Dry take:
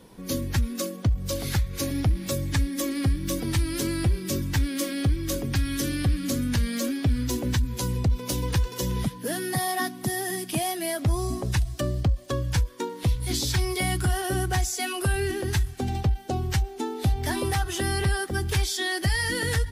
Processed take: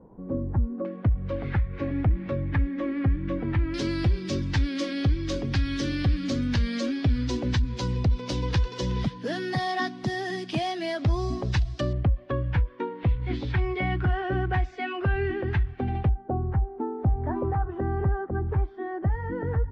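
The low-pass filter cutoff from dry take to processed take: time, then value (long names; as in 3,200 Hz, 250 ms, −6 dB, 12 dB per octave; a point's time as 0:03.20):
low-pass filter 24 dB per octave
1,000 Hz
from 0:00.85 2,200 Hz
from 0:03.74 5,100 Hz
from 0:11.93 2,500 Hz
from 0:16.09 1,200 Hz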